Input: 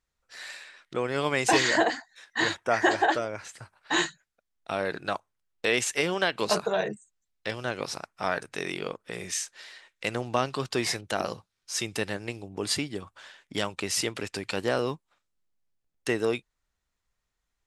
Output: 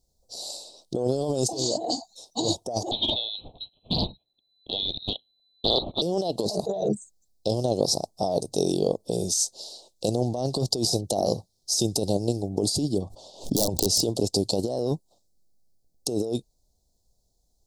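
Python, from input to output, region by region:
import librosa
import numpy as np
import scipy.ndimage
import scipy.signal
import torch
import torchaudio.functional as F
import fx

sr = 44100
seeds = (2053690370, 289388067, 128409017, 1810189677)

y = fx.chain(x, sr, fx.freq_invert(carrier_hz=4000),
    fx.doppler_dist(depth_ms=0.39), at=(2.91, 6.02))
y = fx.chain(y, sr, fx.lowpass(hz=3500.0, slope=6),
    fx.overflow_wrap(gain_db=23.0),
    fx.pre_swell(db_per_s=86.0), at=(12.98, 14.03))
y = scipy.signal.sosfilt(scipy.signal.ellip(3, 1.0, 80, [720.0, 4400.0], 'bandstop', fs=sr, output='sos'), y)
y = fx.over_compress(y, sr, threshold_db=-34.0, ratio=-1.0)
y = F.gain(torch.from_numpy(y), 9.0).numpy()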